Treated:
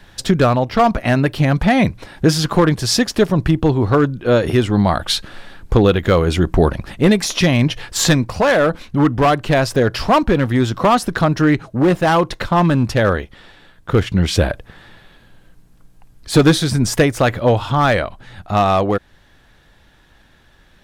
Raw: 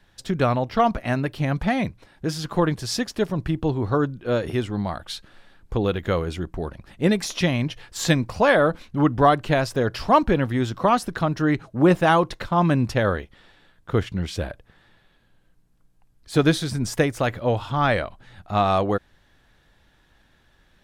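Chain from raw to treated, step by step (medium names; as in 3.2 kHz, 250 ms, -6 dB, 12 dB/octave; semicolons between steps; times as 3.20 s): in parallel at -3 dB: compression, threshold -27 dBFS, peak gain reduction 15 dB; on the sum: hard clipper -12 dBFS, distortion -15 dB; gain riding 0.5 s; trim +6 dB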